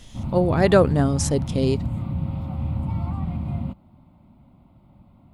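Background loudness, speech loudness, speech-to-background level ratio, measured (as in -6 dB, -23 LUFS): -28.0 LUFS, -21.0 LUFS, 7.0 dB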